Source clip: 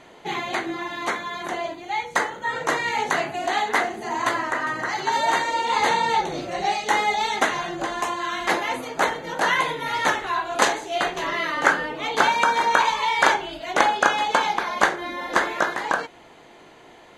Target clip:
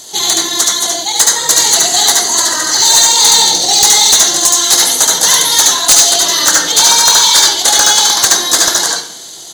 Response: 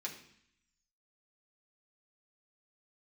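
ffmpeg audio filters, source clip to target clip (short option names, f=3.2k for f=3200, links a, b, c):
-filter_complex "[0:a]atempo=1.8,asplit=2[a][b];[1:a]atrim=start_sample=2205,asetrate=40131,aresample=44100,adelay=72[c];[b][c]afir=irnorm=-1:irlink=0,volume=0dB[d];[a][d]amix=inputs=2:normalize=0,aexciter=amount=12.5:drive=9.5:freq=3.8k,acontrast=24,volume=-1dB"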